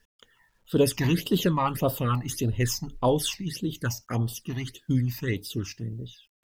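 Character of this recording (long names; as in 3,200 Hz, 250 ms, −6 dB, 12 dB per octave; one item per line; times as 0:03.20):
phaser sweep stages 8, 1.7 Hz, lowest notch 420–2,100 Hz
a quantiser's noise floor 12 bits, dither none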